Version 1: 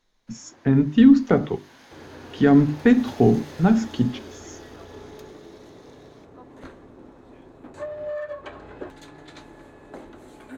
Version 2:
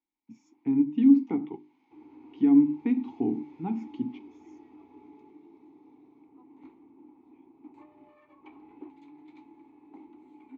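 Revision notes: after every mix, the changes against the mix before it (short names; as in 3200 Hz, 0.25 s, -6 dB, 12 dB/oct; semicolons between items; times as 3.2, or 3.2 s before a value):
first sound -7.0 dB; master: add vowel filter u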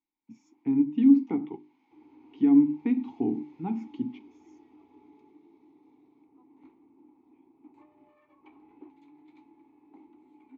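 second sound -4.5 dB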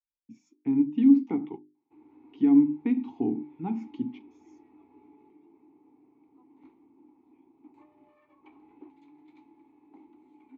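first sound: muted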